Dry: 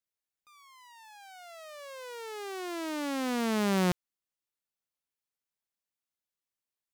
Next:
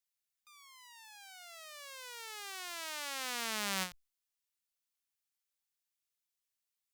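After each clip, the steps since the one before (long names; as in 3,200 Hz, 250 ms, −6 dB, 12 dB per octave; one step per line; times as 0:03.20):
guitar amp tone stack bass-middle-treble 10-0-10
every ending faded ahead of time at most 210 dB per second
level +3.5 dB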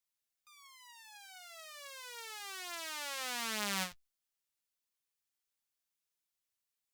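flanger 0.42 Hz, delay 8.4 ms, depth 1.3 ms, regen −35%
level +3.5 dB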